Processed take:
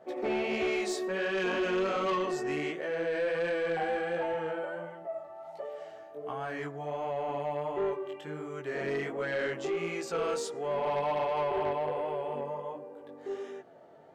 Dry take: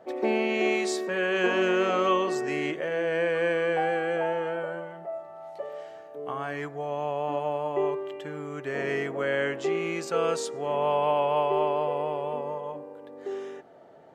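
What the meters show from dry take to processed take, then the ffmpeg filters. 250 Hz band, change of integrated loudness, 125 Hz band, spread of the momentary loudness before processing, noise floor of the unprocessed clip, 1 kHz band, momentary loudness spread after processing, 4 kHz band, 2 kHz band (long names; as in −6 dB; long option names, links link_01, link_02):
−4.5 dB, −5.0 dB, −4.0 dB, 14 LU, −46 dBFS, −5.0 dB, 12 LU, −5.0 dB, −5.0 dB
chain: -af "flanger=delay=15.5:depth=6.1:speed=1.4,asoftclip=type=tanh:threshold=-24.5dB"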